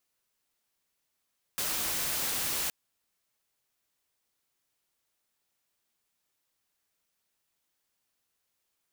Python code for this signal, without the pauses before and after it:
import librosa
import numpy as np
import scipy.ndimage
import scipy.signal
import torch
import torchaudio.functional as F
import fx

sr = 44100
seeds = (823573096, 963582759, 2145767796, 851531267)

y = fx.noise_colour(sr, seeds[0], length_s=1.12, colour='white', level_db=-31.5)